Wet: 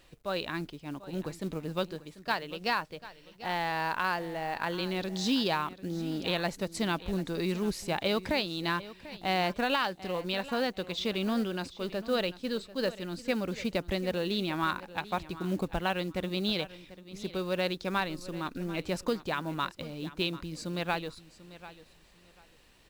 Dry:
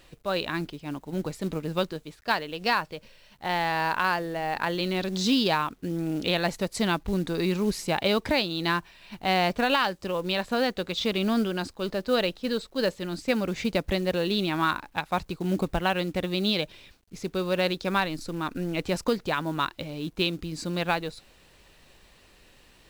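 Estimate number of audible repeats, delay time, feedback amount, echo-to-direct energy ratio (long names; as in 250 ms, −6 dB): 2, 742 ms, 22%, −16.5 dB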